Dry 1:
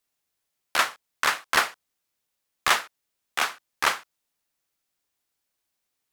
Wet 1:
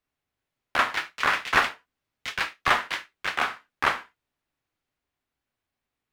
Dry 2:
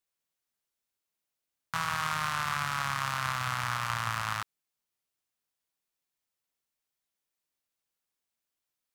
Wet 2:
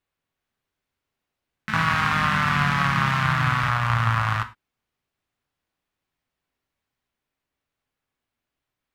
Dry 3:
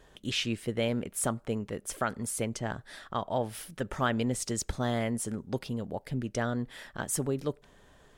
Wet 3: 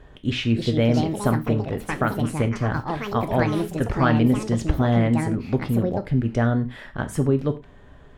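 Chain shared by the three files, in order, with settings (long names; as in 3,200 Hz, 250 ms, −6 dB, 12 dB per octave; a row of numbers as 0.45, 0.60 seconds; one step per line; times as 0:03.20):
bass and treble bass +7 dB, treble −15 dB
reverb whose tail is shaped and stops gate 130 ms falling, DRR 8 dB
delay with pitch and tempo change per echo 380 ms, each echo +5 semitones, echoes 2, each echo −6 dB
normalise the peak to −6 dBFS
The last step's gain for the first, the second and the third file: +0.5, +8.0, +6.0 decibels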